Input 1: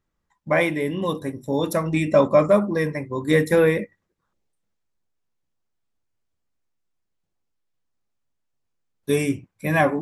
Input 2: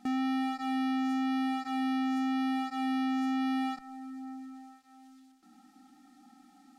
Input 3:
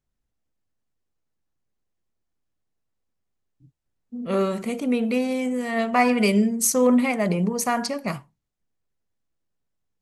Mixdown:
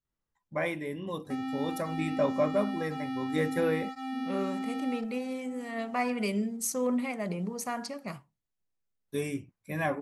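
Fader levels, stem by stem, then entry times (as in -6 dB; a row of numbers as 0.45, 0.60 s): -11.5, -4.5, -11.0 dB; 0.05, 1.25, 0.00 s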